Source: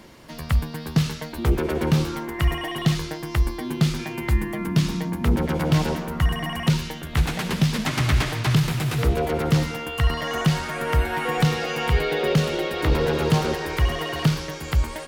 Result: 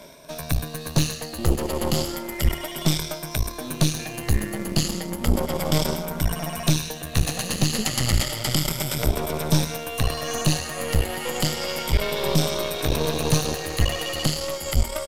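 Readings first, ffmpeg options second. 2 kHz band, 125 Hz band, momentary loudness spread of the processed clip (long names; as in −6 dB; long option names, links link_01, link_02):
−3.5 dB, −3.0 dB, 5 LU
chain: -filter_complex "[0:a]afftfilt=real='re*pow(10,13/40*sin(2*PI*(1.6*log(max(b,1)*sr/1024/100)/log(2)-(0.32)*(pts-256)/sr)))':imag='im*pow(10,13/40*sin(2*PI*(1.6*log(max(b,1)*sr/1024/100)/log(2)-(0.32)*(pts-256)/sr)))':win_size=1024:overlap=0.75,acrossover=split=320|3000[link_01][link_02][link_03];[link_02]acompressor=threshold=-35dB:ratio=2.5[link_04];[link_01][link_04][link_03]amix=inputs=3:normalize=0,asplit=2[link_05][link_06];[link_06]acrusher=bits=5:mix=0:aa=0.000001,volume=-10.5dB[link_07];[link_05][link_07]amix=inputs=2:normalize=0,equalizer=frequency=590:width_type=o:width=0.51:gain=13,areverse,acompressor=mode=upward:threshold=-32dB:ratio=2.5,areverse,aeval=exprs='0.75*(cos(1*acos(clip(val(0)/0.75,-1,1)))-cos(1*PI/2))+0.15*(cos(6*acos(clip(val(0)/0.75,-1,1)))-cos(6*PI/2))':channel_layout=same,highshelf=frequency=3700:gain=11.5,aresample=32000,aresample=44100,volume=-7dB"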